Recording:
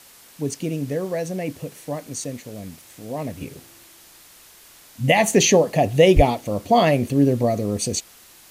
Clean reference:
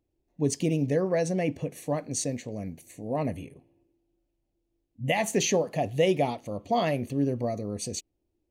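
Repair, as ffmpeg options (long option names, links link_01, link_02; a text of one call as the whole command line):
ffmpeg -i in.wav -filter_complex "[0:a]asplit=3[link_01][link_02][link_03];[link_01]afade=type=out:start_time=6.15:duration=0.02[link_04];[link_02]highpass=frequency=140:width=0.5412,highpass=frequency=140:width=1.3066,afade=type=in:start_time=6.15:duration=0.02,afade=type=out:start_time=6.27:duration=0.02[link_05];[link_03]afade=type=in:start_time=6.27:duration=0.02[link_06];[link_04][link_05][link_06]amix=inputs=3:normalize=0,afwtdn=0.0045,asetnsamples=nb_out_samples=441:pad=0,asendcmd='3.41 volume volume -9.5dB',volume=0dB" out.wav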